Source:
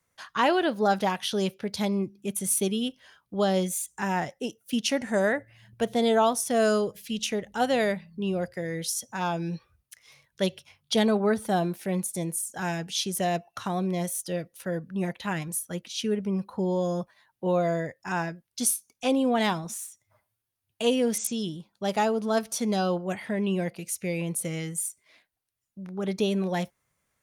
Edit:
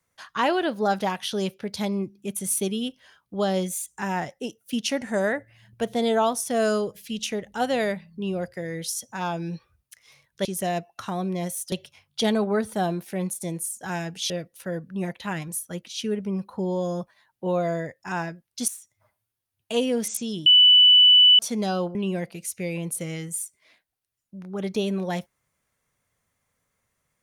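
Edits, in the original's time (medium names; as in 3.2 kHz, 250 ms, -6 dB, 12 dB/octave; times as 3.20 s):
13.03–14.30 s: move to 10.45 s
18.68–19.78 s: delete
21.56–22.49 s: bleep 2.98 kHz -10.5 dBFS
23.05–23.39 s: delete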